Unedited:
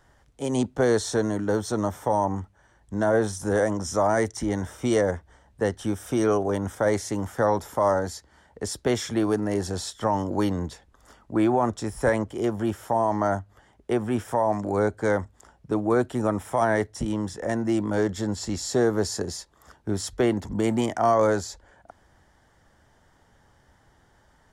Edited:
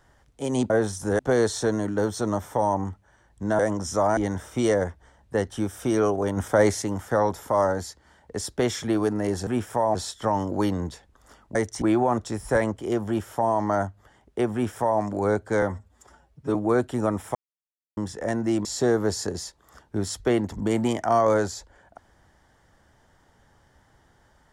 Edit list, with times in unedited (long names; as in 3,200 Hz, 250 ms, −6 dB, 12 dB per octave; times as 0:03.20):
0:03.10–0:03.59: move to 0:00.70
0:04.17–0:04.44: move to 0:11.34
0:06.64–0:07.09: clip gain +4 dB
0:14.05–0:14.53: duplicate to 0:09.74
0:15.14–0:15.76: time-stretch 1.5×
0:16.56–0:17.18: silence
0:17.86–0:18.58: remove